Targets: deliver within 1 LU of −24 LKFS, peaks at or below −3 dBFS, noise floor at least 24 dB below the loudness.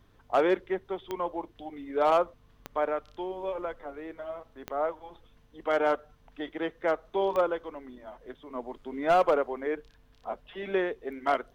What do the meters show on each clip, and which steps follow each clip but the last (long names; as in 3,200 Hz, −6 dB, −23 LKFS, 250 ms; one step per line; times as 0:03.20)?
number of clicks 4; mains hum 50 Hz; hum harmonics up to 150 Hz; level of the hum −63 dBFS; integrated loudness −30.5 LKFS; sample peak −16.0 dBFS; target loudness −24.0 LKFS
→ click removal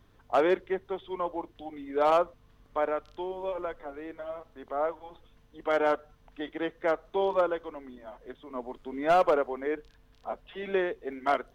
number of clicks 0; mains hum 50 Hz; hum harmonics up to 150 Hz; level of the hum −63 dBFS
→ hum removal 50 Hz, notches 3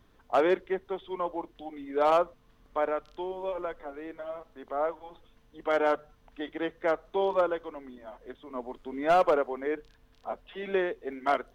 mains hum none found; integrated loudness −30.5 LKFS; sample peak −15.5 dBFS; target loudness −24.0 LKFS
→ level +6.5 dB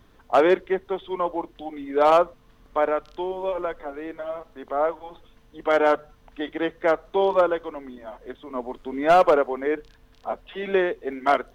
integrated loudness −24.0 LKFS; sample peak −9.0 dBFS; background noise floor −56 dBFS